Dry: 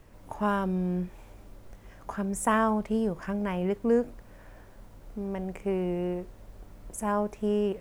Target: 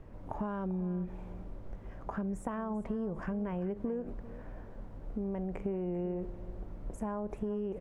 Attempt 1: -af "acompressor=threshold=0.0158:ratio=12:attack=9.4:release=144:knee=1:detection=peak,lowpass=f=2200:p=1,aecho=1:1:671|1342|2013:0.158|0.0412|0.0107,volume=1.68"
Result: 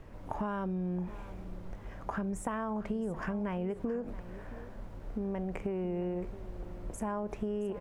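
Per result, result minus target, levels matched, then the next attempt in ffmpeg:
echo 277 ms late; 2 kHz band +5.0 dB
-af "acompressor=threshold=0.0158:ratio=12:attack=9.4:release=144:knee=1:detection=peak,lowpass=f=2200:p=1,aecho=1:1:394|788|1182:0.158|0.0412|0.0107,volume=1.68"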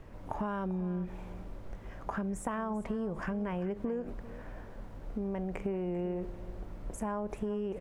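2 kHz band +4.5 dB
-af "acompressor=threshold=0.0158:ratio=12:attack=9.4:release=144:knee=1:detection=peak,lowpass=f=760:p=1,aecho=1:1:394|788|1182:0.158|0.0412|0.0107,volume=1.68"

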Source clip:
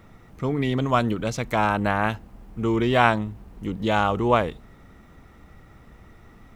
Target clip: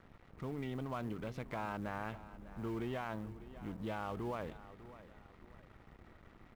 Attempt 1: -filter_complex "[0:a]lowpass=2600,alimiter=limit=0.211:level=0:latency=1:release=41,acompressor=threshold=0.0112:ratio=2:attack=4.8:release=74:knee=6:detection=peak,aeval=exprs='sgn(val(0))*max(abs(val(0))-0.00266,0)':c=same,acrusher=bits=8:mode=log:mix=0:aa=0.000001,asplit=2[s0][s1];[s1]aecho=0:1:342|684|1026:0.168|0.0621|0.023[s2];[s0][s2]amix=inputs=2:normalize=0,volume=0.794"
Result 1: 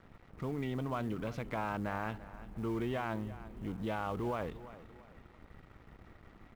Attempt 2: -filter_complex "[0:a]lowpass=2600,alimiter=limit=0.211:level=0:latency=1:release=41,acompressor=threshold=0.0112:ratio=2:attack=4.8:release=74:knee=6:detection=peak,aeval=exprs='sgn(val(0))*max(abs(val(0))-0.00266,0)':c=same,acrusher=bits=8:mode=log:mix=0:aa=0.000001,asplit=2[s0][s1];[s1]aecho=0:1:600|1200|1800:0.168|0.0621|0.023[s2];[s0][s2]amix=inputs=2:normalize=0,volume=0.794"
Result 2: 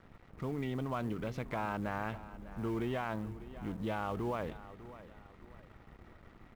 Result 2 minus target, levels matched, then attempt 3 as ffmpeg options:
compression: peak gain reduction -3.5 dB
-filter_complex "[0:a]lowpass=2600,alimiter=limit=0.211:level=0:latency=1:release=41,acompressor=threshold=0.00473:ratio=2:attack=4.8:release=74:knee=6:detection=peak,aeval=exprs='sgn(val(0))*max(abs(val(0))-0.00266,0)':c=same,acrusher=bits=8:mode=log:mix=0:aa=0.000001,asplit=2[s0][s1];[s1]aecho=0:1:600|1200|1800:0.168|0.0621|0.023[s2];[s0][s2]amix=inputs=2:normalize=0,volume=0.794"

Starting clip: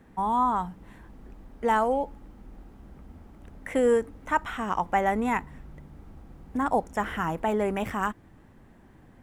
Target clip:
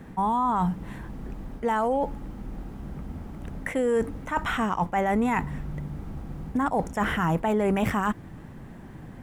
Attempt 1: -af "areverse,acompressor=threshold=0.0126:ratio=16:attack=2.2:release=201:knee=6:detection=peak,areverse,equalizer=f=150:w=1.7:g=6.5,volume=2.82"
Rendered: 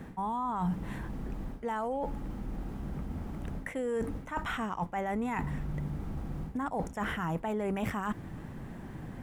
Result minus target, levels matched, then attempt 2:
compression: peak gain reduction +9 dB
-af "areverse,acompressor=threshold=0.0376:ratio=16:attack=2.2:release=201:knee=6:detection=peak,areverse,equalizer=f=150:w=1.7:g=6.5,volume=2.82"

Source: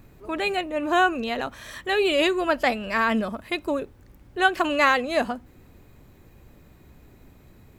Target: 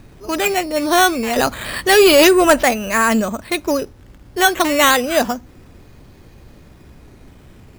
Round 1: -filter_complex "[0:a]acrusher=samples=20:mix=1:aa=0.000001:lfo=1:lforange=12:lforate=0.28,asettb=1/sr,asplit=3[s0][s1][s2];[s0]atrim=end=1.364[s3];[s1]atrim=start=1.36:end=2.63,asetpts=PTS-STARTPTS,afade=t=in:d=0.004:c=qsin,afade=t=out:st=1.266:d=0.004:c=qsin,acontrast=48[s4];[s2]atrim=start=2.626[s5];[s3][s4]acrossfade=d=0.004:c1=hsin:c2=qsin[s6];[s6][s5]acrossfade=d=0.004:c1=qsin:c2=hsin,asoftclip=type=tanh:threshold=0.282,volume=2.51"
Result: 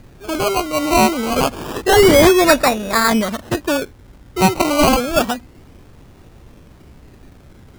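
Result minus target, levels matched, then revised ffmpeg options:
decimation with a swept rate: distortion +10 dB
-filter_complex "[0:a]acrusher=samples=7:mix=1:aa=0.000001:lfo=1:lforange=4.2:lforate=0.28,asettb=1/sr,asplit=3[s0][s1][s2];[s0]atrim=end=1.364[s3];[s1]atrim=start=1.36:end=2.63,asetpts=PTS-STARTPTS,afade=t=in:d=0.004:c=qsin,afade=t=out:st=1.266:d=0.004:c=qsin,acontrast=48[s4];[s2]atrim=start=2.626[s5];[s3][s4]acrossfade=d=0.004:c1=hsin:c2=qsin[s6];[s6][s5]acrossfade=d=0.004:c1=qsin:c2=hsin,asoftclip=type=tanh:threshold=0.282,volume=2.51"

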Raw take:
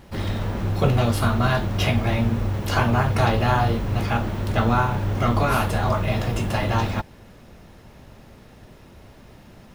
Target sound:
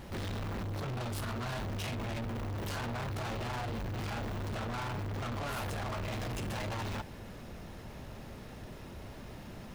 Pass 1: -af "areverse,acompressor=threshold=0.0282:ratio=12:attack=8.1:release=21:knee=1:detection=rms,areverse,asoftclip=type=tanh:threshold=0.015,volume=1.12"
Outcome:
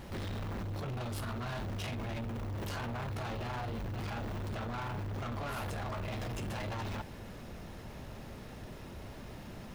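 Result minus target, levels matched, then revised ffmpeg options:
compression: peak gain reduction +6.5 dB
-af "areverse,acompressor=threshold=0.0631:ratio=12:attack=8.1:release=21:knee=1:detection=rms,areverse,asoftclip=type=tanh:threshold=0.015,volume=1.12"

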